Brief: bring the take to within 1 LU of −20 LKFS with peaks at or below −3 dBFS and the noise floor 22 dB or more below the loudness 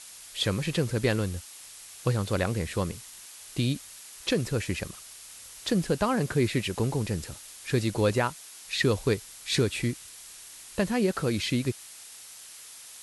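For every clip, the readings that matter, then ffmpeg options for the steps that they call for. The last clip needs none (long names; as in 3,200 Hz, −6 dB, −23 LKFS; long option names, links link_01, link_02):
background noise floor −47 dBFS; target noise floor −51 dBFS; integrated loudness −29.0 LKFS; sample peak −13.0 dBFS; target loudness −20.0 LKFS
→ -af "afftdn=noise_reduction=6:noise_floor=-47"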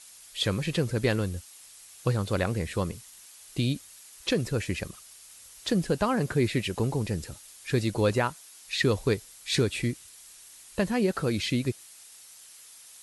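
background noise floor −51 dBFS; integrated loudness −29.0 LKFS; sample peak −13.5 dBFS; target loudness −20.0 LKFS
→ -af "volume=9dB"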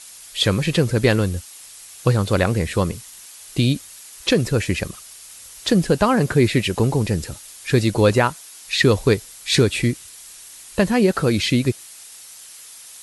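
integrated loudness −20.0 LKFS; sample peak −4.5 dBFS; background noise floor −42 dBFS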